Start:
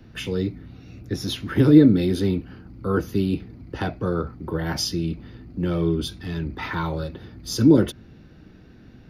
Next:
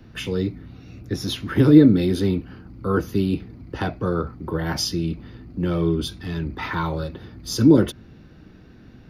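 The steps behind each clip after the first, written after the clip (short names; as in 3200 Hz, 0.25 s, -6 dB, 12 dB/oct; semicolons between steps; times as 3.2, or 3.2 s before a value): bell 1100 Hz +2.5 dB 0.44 oct; gain +1 dB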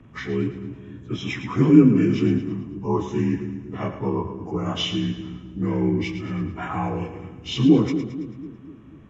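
inharmonic rescaling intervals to 83%; split-band echo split 360 Hz, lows 0.245 s, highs 0.11 s, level -10 dB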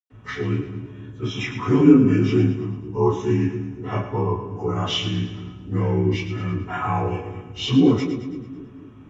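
reverb, pre-delay 0.1 s; gain -1 dB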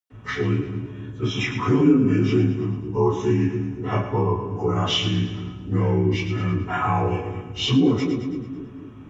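compressor 2:1, threshold -21 dBFS, peak gain reduction 8 dB; gain +3 dB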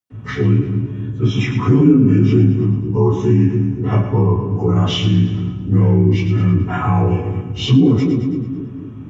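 bell 140 Hz +11.5 dB 2.5 oct; in parallel at -3 dB: limiter -9.5 dBFS, peak gain reduction 10 dB; on the sum: gain -4 dB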